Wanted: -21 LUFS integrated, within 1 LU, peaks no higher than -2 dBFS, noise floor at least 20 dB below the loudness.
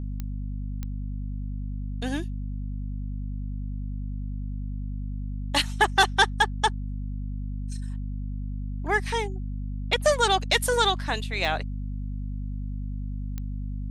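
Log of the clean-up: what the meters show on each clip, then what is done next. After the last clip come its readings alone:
clicks found 4; hum 50 Hz; highest harmonic 250 Hz; hum level -29 dBFS; loudness -28.5 LUFS; peak level -7.0 dBFS; loudness target -21.0 LUFS
-> de-click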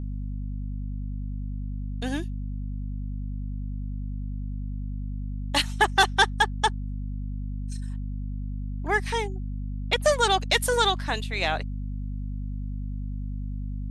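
clicks found 0; hum 50 Hz; highest harmonic 250 Hz; hum level -29 dBFS
-> de-hum 50 Hz, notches 5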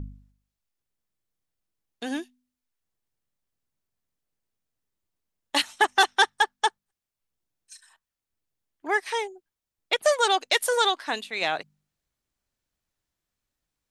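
hum not found; loudness -24.5 LUFS; peak level -7.5 dBFS; loudness target -21.0 LUFS
-> trim +3.5 dB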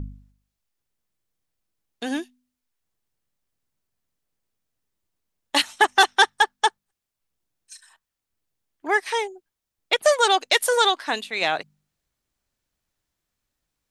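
loudness -21.0 LUFS; peak level -4.0 dBFS; noise floor -85 dBFS

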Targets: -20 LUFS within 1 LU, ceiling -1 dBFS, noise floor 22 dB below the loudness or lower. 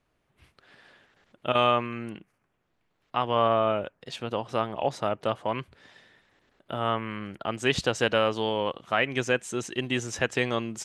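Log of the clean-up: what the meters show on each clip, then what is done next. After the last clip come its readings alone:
loudness -28.0 LUFS; peak level -8.0 dBFS; loudness target -20.0 LUFS
-> trim +8 dB; peak limiter -1 dBFS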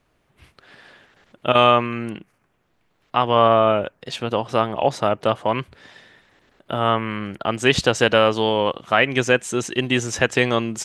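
loudness -20.0 LUFS; peak level -1.0 dBFS; noise floor -66 dBFS

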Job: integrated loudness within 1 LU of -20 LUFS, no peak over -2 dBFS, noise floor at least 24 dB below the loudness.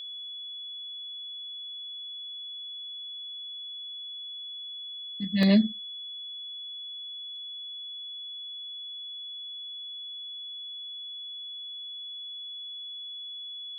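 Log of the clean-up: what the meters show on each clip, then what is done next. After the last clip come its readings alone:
dropouts 1; longest dropout 1.7 ms; steady tone 3.4 kHz; tone level -37 dBFS; loudness -34.0 LUFS; peak level -11.5 dBFS; loudness target -20.0 LUFS
-> interpolate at 5.43 s, 1.7 ms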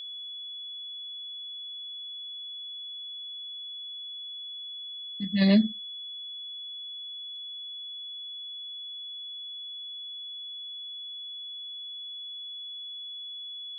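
dropouts 0; steady tone 3.4 kHz; tone level -37 dBFS
-> band-stop 3.4 kHz, Q 30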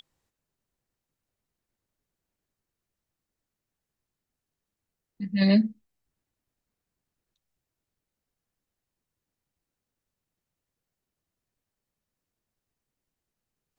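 steady tone not found; loudness -24.0 LUFS; peak level -11.5 dBFS; loudness target -20.0 LUFS
-> trim +4 dB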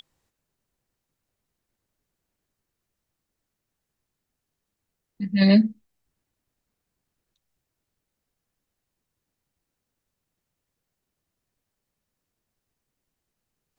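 loudness -20.0 LUFS; peak level -7.5 dBFS; noise floor -83 dBFS

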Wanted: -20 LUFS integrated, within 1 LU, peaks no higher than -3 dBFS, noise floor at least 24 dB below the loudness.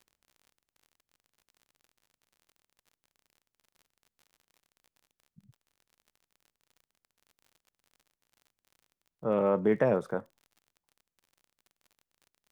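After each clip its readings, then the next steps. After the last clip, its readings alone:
tick rate 45 per s; loudness -29.0 LUFS; peak level -13.0 dBFS; loudness target -20.0 LUFS
-> de-click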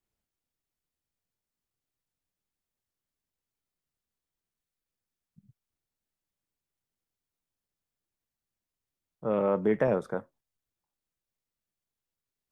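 tick rate 0 per s; loudness -29.0 LUFS; peak level -13.0 dBFS; loudness target -20.0 LUFS
-> trim +9 dB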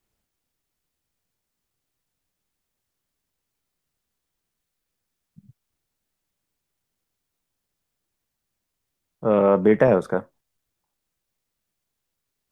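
loudness -20.0 LUFS; peak level -4.0 dBFS; noise floor -81 dBFS

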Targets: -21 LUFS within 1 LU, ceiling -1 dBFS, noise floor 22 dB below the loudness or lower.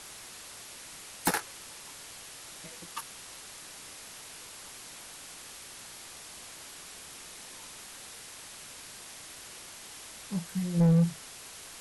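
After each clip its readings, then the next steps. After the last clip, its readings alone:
clipped samples 0.8%; clipping level -19.5 dBFS; noise floor -47 dBFS; noise floor target -59 dBFS; loudness -36.5 LUFS; peak level -19.5 dBFS; loudness target -21.0 LUFS
-> clip repair -19.5 dBFS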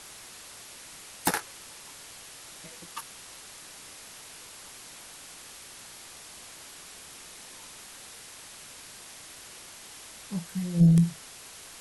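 clipped samples 0.0%; noise floor -47 dBFS; noise floor target -50 dBFS
-> noise reduction 6 dB, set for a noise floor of -47 dBFS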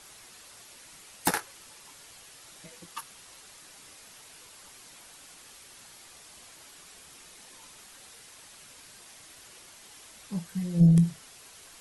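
noise floor -52 dBFS; loudness -26.5 LUFS; peak level -10.5 dBFS; loudness target -21.0 LUFS
-> trim +5.5 dB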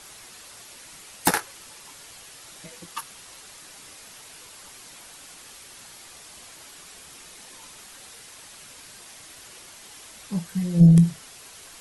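loudness -21.0 LUFS; peak level -5.0 dBFS; noise floor -46 dBFS

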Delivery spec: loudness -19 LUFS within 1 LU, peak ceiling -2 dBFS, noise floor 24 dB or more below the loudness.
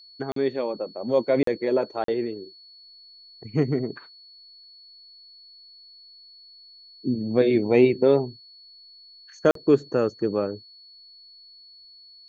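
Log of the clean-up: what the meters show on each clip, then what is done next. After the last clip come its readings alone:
dropouts 4; longest dropout 43 ms; steady tone 4.4 kHz; tone level -47 dBFS; loudness -24.0 LUFS; peak level -6.5 dBFS; loudness target -19.0 LUFS
-> interpolate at 0.32/1.43/2.04/9.51 s, 43 ms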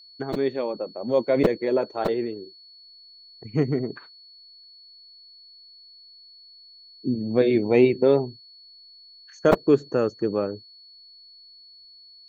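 dropouts 0; steady tone 4.4 kHz; tone level -47 dBFS
-> band-stop 4.4 kHz, Q 30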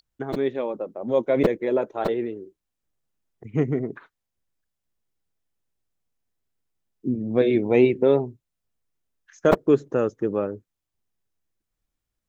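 steady tone not found; loudness -23.5 LUFS; peak level -3.5 dBFS; loudness target -19.0 LUFS
-> trim +4.5 dB; peak limiter -2 dBFS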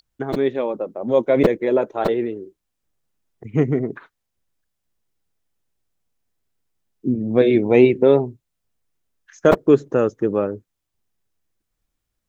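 loudness -19.0 LUFS; peak level -2.0 dBFS; noise floor -78 dBFS

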